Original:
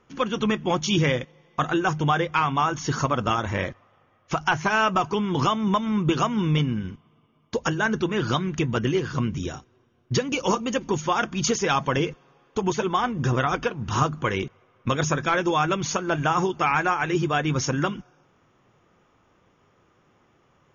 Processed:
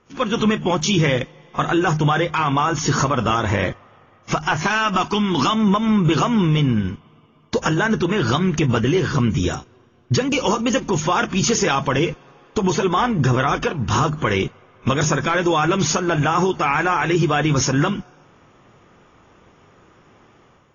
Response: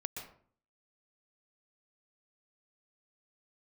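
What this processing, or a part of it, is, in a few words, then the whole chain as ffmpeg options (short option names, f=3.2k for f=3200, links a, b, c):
low-bitrate web radio: -filter_complex "[0:a]asettb=1/sr,asplit=3[a][b][c];[a]atrim=end=4.624[d];[b]atrim=start=4.62:end=5.54,asetpts=PTS-STARTPTS,afade=t=in:d=0.004:c=qsin,afade=t=out:st=0.916:d=0.004:c=qsin,equalizer=f=125:t=o:w=1:g=-11,equalizer=f=250:t=o:w=1:g=4,equalizer=f=500:t=o:w=1:g=-9,equalizer=f=4k:t=o:w=1:g=4[e];[c]atrim=start=5.536[f];[d][e]acrossfade=d=0.004:c1=hsin:c2=qsin[g];[g][f]acrossfade=d=0.004:c1=qsin:c2=hsin,dynaudnorm=f=120:g=5:m=7.5dB,alimiter=limit=-11.5dB:level=0:latency=1:release=60,volume=2dB" -ar 22050 -c:a aac -b:a 24k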